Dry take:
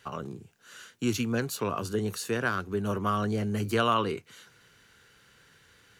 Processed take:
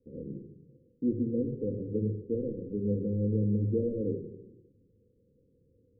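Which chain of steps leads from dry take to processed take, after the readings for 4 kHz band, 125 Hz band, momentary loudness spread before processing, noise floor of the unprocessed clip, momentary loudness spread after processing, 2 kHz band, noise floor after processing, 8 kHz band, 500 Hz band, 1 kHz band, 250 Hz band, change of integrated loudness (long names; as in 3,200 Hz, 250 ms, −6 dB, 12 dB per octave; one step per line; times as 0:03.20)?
below −40 dB, +1.5 dB, 14 LU, −61 dBFS, 14 LU, below −40 dB, −68 dBFS, below −40 dB, −1.5 dB, below −40 dB, +0.5 dB, −2.5 dB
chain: one scale factor per block 3 bits
Chebyshev low-pass filter 520 Hz, order 8
low-shelf EQ 210 Hz −6 dB
rectangular room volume 2,400 cubic metres, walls furnished, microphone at 2.1 metres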